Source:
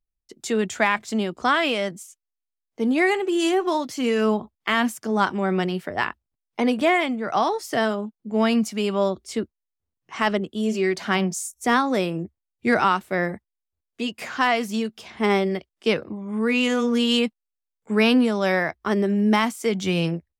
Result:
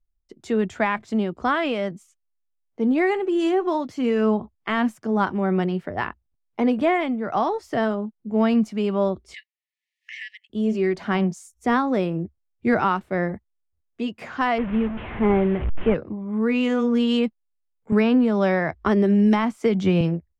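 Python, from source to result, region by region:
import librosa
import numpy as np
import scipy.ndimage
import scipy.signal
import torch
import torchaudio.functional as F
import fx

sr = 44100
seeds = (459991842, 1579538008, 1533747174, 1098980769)

y = fx.chain(x, sr, fx.brickwall_highpass(low_hz=1700.0),
    fx.high_shelf(hz=7300.0, db=-10.0),
    fx.band_squash(depth_pct=100), at=(9.34, 10.5))
y = fx.chain(y, sr, fx.delta_mod(bps=16000, step_db=-26.5),
    fx.low_shelf(hz=190.0, db=5.0), at=(14.58, 15.95))
y = fx.chain(y, sr, fx.high_shelf(hz=11000.0, db=-6.5),
    fx.band_squash(depth_pct=100), at=(17.92, 20.01))
y = fx.lowpass(y, sr, hz=1400.0, slope=6)
y = fx.low_shelf(y, sr, hz=100.0, db=10.5)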